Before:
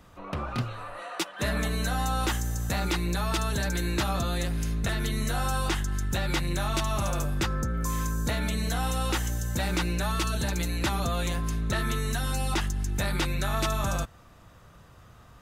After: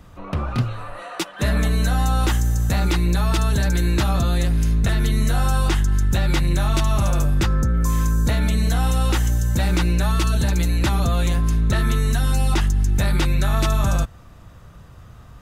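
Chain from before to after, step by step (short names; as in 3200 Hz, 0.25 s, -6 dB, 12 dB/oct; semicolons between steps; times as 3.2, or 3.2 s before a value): low shelf 200 Hz +8.5 dB; gain +3.5 dB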